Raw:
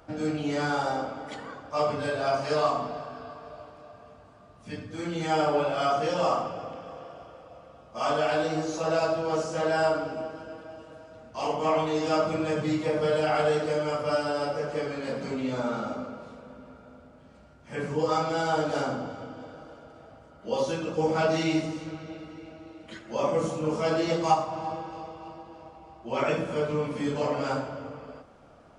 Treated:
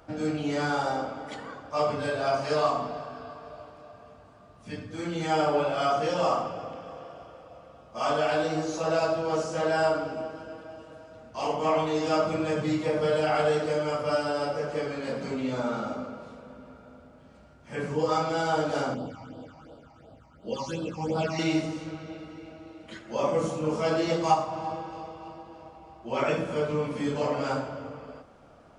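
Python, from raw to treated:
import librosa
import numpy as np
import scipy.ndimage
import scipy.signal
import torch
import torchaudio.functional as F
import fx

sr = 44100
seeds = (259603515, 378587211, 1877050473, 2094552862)

y = fx.phaser_stages(x, sr, stages=8, low_hz=430.0, high_hz=2100.0, hz=2.8, feedback_pct=25, at=(18.94, 21.39))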